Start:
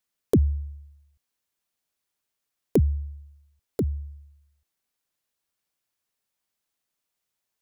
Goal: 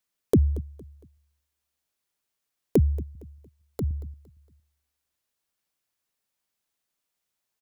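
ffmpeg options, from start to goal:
-filter_complex "[0:a]asettb=1/sr,asplit=3[a][b][c];[a]atrim=end=3.154[d];[b]atrim=start=3.15:end=3.91,asetpts=PTS-STARTPTS,afade=t=in:d=0.004:c=qsin,afade=t=out:st=0.756:d=0.004:c=qsin,acrossover=split=180|3000[e][f][g];[f]acompressor=threshold=-38dB:ratio=2[h];[e][h][g]amix=inputs=3:normalize=0[i];[c]atrim=start=3.906[j];[d][i]acrossfade=d=0.004:c1=hsin:c2=qsin[k];[k][j]acrossfade=d=0.004:c1=qsin:c2=hsin,asplit=2[l][m];[m]aecho=0:1:230|460|690:0.106|0.0381|0.0137[n];[l][n]amix=inputs=2:normalize=0"

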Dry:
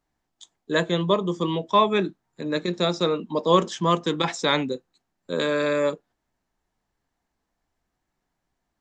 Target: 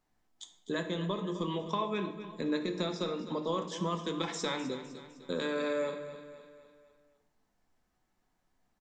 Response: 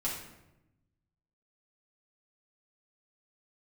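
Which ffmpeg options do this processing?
-filter_complex "[0:a]acompressor=threshold=-31dB:ratio=6,aecho=1:1:254|508|762|1016|1270:0.224|0.112|0.056|0.028|0.014,asplit=2[a][b];[1:a]atrim=start_sample=2205[c];[b][c]afir=irnorm=-1:irlink=0,volume=-6.5dB[d];[a][d]amix=inputs=2:normalize=0,volume=-3.5dB"

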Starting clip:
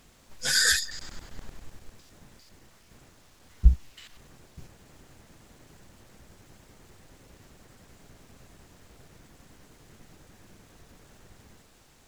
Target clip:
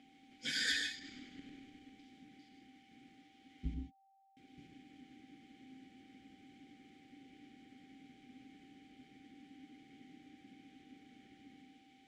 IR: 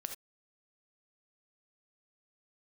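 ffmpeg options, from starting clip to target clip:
-filter_complex "[0:a]asettb=1/sr,asplit=3[a][b][c];[a]atrim=end=3.744[d];[b]atrim=start=3.74:end=4.37,asetpts=PTS-STARTPTS,afade=t=in:d=0.004:c=qsin,afade=t=out:st=0.626:d=0.004:c=qsin,acrusher=bits=3:mix=0:aa=0.5[e];[c]atrim=start=4.366[f];[d][e]acrossfade=d=0.004:c1=hsin:c2=qsin[g];[g][f]acrossfade=d=0.004:c1=qsin:c2=hsin,aeval=exprs='val(0)+0.0126*sin(2*PI*780*n/s)':c=same,asplit=3[h][i][j];[h]bandpass=f=270:t=q:w=8,volume=0dB[k];[i]bandpass=f=2.29k:t=q:w=8,volume=-6dB[l];[j]bandpass=f=3.01k:t=q:w=8,volume=-9dB[m];[k][l][m]amix=inputs=3:normalize=0[n];[1:a]atrim=start_sample=2205,asetrate=24255,aresample=44100[o];[n][o]afir=irnorm=-1:irlink=0,volume=5.5dB"

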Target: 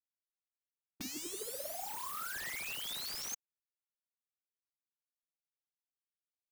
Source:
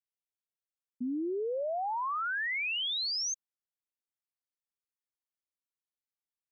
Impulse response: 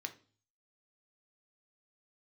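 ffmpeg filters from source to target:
-af "acrusher=bits=7:mix=0:aa=0.000001,afftfilt=real='re*lt(hypot(re,im),0.1)':imag='im*lt(hypot(re,im),0.1)':win_size=1024:overlap=0.75,volume=9.5dB"

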